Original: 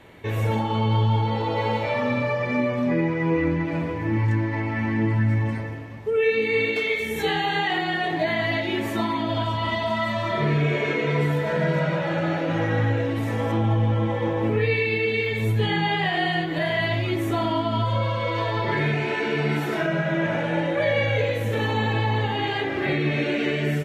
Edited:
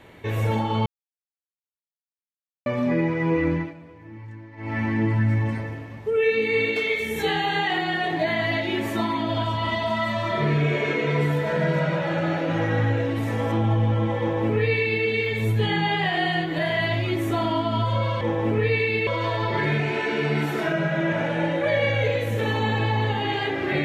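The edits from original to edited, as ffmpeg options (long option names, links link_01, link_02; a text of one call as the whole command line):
ffmpeg -i in.wav -filter_complex "[0:a]asplit=7[link_01][link_02][link_03][link_04][link_05][link_06][link_07];[link_01]atrim=end=0.86,asetpts=PTS-STARTPTS,afade=type=out:start_time=0.856:duration=0.004:curve=hsin[link_08];[link_02]atrim=start=0.86:end=2.66,asetpts=PTS-STARTPTS,volume=0[link_09];[link_03]atrim=start=2.66:end=3.74,asetpts=PTS-STARTPTS,afade=type=in:duration=0.004:curve=hsin,afade=type=out:start_time=0.9:duration=0.18:silence=0.125893[link_10];[link_04]atrim=start=3.74:end=4.57,asetpts=PTS-STARTPTS,volume=-18dB[link_11];[link_05]atrim=start=4.57:end=18.212,asetpts=PTS-STARTPTS,afade=type=in:duration=0.18:silence=0.125893[link_12];[link_06]atrim=start=14.188:end=15.052[link_13];[link_07]atrim=start=18.208[link_14];[link_08][link_09][link_10][link_11][link_12]concat=n=5:v=0:a=1[link_15];[link_15][link_13]acrossfade=duration=0.004:curve1=hsin:curve2=hsin[link_16];[link_16][link_14]acrossfade=duration=0.004:curve1=hsin:curve2=hsin" out.wav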